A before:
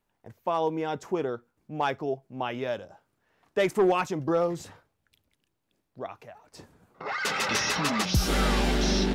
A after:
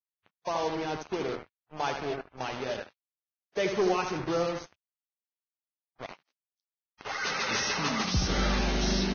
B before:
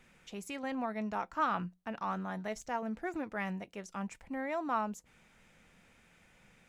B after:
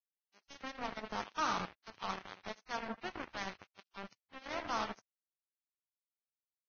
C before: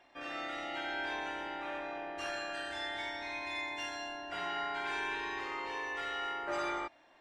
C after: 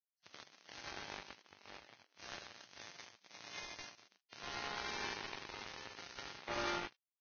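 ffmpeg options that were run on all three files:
-filter_complex "[0:a]asplit=2[a][b];[b]adelay=77,lowpass=f=3.3k:p=1,volume=-6dB,asplit=2[c][d];[d]adelay=77,lowpass=f=3.3k:p=1,volume=0.51,asplit=2[e][f];[f]adelay=77,lowpass=f=3.3k:p=1,volume=0.51,asplit=2[g][h];[h]adelay=77,lowpass=f=3.3k:p=1,volume=0.51,asplit=2[i][j];[j]adelay=77,lowpass=f=3.3k:p=1,volume=0.51,asplit=2[k][l];[l]adelay=77,lowpass=f=3.3k:p=1,volume=0.51[m];[a][c][e][g][i][k][m]amix=inputs=7:normalize=0,acrusher=bits=4:mix=0:aa=0.5,volume=-4.5dB" -ar 16000 -c:a libvorbis -b:a 16k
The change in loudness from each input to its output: -3.0, -4.0, -8.0 LU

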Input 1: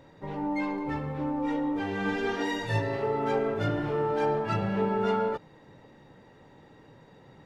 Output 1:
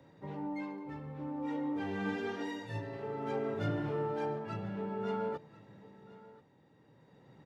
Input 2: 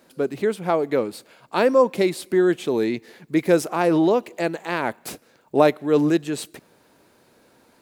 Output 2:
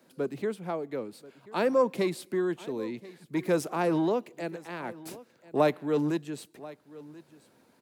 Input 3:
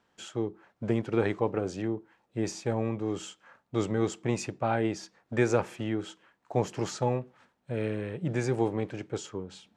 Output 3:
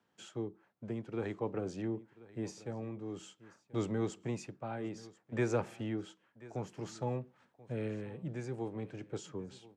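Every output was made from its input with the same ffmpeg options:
-filter_complex "[0:a]tremolo=f=0.53:d=0.54,lowshelf=f=190:g=10,acrossover=split=190|450|4000[a][b][c][d];[b]asoftclip=type=tanh:threshold=-21dB[e];[a][e][c][d]amix=inputs=4:normalize=0,highpass=130,aecho=1:1:1035:0.106,volume=-7.5dB"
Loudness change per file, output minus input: -8.5, -8.5, -8.5 LU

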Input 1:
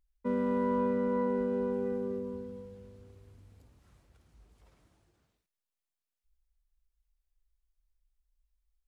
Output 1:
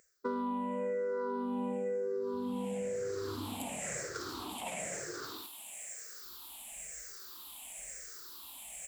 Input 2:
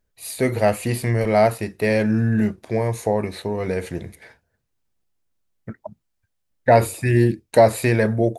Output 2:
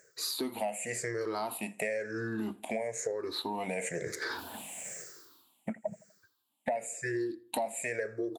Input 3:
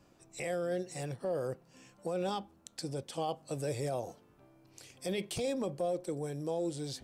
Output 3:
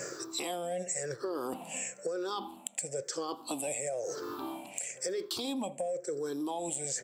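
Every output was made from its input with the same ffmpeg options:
-filter_complex "[0:a]afftfilt=real='re*pow(10,19/40*sin(2*PI*(0.54*log(max(b,1)*sr/1024/100)/log(2)-(-1)*(pts-256)/sr)))':imag='im*pow(10,19/40*sin(2*PI*(0.54*log(max(b,1)*sr/1024/100)/log(2)-(-1)*(pts-256)/sr)))':win_size=1024:overlap=0.75,highpass=320,areverse,acompressor=mode=upward:threshold=-19dB:ratio=2.5,areverse,equalizer=f=7.5k:w=4.9:g=12,acompressor=threshold=-32dB:ratio=8,asplit=2[a][b];[b]adelay=82,lowpass=f=2.7k:p=1,volume=-21dB,asplit=2[c][d];[d]adelay=82,lowpass=f=2.7k:p=1,volume=0.48,asplit=2[e][f];[f]adelay=82,lowpass=f=2.7k:p=1,volume=0.48[g];[c][e][g]amix=inputs=3:normalize=0[h];[a][h]amix=inputs=2:normalize=0,asoftclip=type=tanh:threshold=-16.5dB"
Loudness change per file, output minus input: -7.0, -16.0, +1.0 LU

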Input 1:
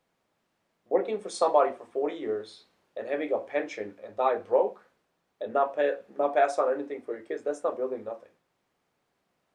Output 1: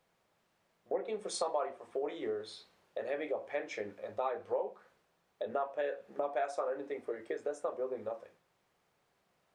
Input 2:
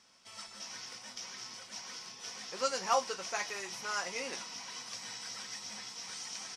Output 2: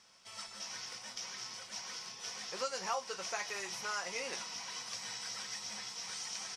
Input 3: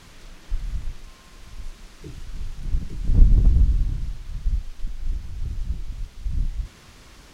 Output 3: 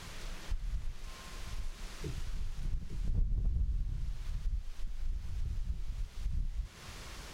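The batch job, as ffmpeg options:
-af "equalizer=f=270:w=2.6:g=-6.5,acompressor=threshold=-36dB:ratio=3,volume=1dB"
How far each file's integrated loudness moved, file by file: -9.5, -2.0, -15.0 LU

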